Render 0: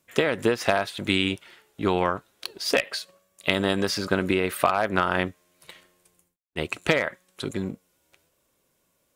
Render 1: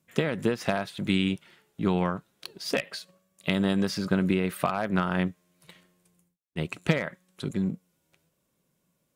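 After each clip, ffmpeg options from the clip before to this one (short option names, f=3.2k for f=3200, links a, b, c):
-af "equalizer=f=170:t=o:w=0.98:g=13,volume=-6.5dB"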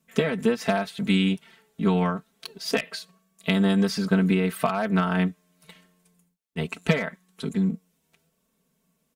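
-af "aecho=1:1:4.5:0.91"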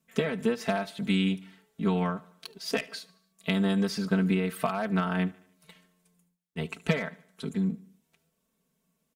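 -af "aecho=1:1:74|148|222|296:0.0794|0.0429|0.0232|0.0125,volume=-4.5dB"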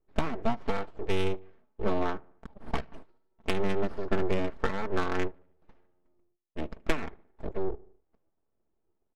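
-af "aeval=exprs='abs(val(0))':c=same,adynamicsmooth=sensitivity=2.5:basefreq=990,volume=2dB"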